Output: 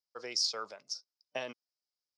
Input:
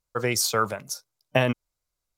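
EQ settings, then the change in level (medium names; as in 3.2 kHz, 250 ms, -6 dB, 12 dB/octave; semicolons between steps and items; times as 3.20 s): high-pass 450 Hz 12 dB/octave; four-pole ladder low-pass 5.4 kHz, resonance 75%; peaking EQ 1.7 kHz -5.5 dB 2.7 oct; 0.0 dB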